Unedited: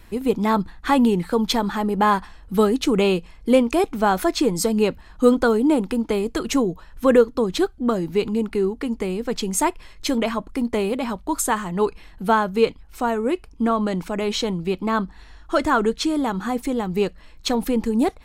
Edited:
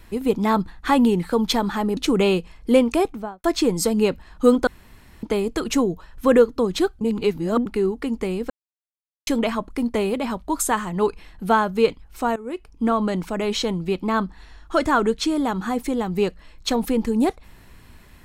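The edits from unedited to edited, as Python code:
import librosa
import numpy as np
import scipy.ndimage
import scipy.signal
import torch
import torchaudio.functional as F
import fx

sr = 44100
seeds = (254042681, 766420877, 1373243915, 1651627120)

y = fx.studio_fade_out(x, sr, start_s=3.72, length_s=0.51)
y = fx.edit(y, sr, fx.cut(start_s=1.97, length_s=0.79),
    fx.room_tone_fill(start_s=5.46, length_s=0.56),
    fx.reverse_span(start_s=7.8, length_s=0.65),
    fx.silence(start_s=9.29, length_s=0.77),
    fx.fade_in_from(start_s=13.15, length_s=0.51, floor_db=-17.0), tone=tone)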